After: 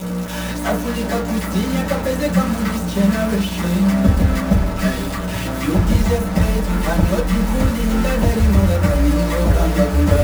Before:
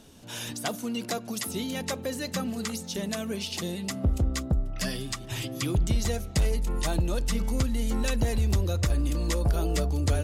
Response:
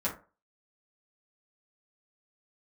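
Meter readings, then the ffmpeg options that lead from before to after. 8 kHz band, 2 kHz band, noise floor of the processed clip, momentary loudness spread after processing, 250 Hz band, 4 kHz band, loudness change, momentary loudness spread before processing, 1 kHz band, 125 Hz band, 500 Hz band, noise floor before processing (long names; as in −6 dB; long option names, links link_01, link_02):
+3.5 dB, +12.0 dB, −24 dBFS, 6 LU, +14.5 dB, +5.0 dB, +11.0 dB, 6 LU, +13.5 dB, +10.5 dB, +13.0 dB, −41 dBFS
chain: -filter_complex "[0:a]acrossover=split=3000[link_01][link_02];[link_02]acompressor=threshold=-48dB:ratio=4:attack=1:release=60[link_03];[link_01][link_03]amix=inputs=2:normalize=0,equalizer=frequency=87:width=0.37:gain=-2,aeval=exprs='val(0)+0.0126*(sin(2*PI*60*n/s)+sin(2*PI*2*60*n/s)/2+sin(2*PI*3*60*n/s)/3+sin(2*PI*4*60*n/s)/4+sin(2*PI*5*60*n/s)/5)':channel_layout=same,acrusher=bits=5:mix=0:aa=0.000001[link_04];[1:a]atrim=start_sample=2205[link_05];[link_04][link_05]afir=irnorm=-1:irlink=0,volume=5dB"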